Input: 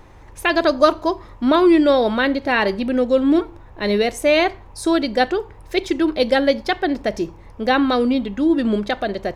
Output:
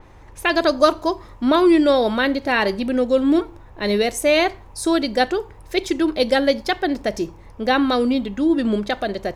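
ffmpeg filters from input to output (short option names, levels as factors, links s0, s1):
-af "adynamicequalizer=threshold=0.0141:dfrequency=5000:dqfactor=0.7:tfrequency=5000:tqfactor=0.7:attack=5:release=100:ratio=0.375:range=3.5:mode=boostabove:tftype=highshelf,volume=0.891"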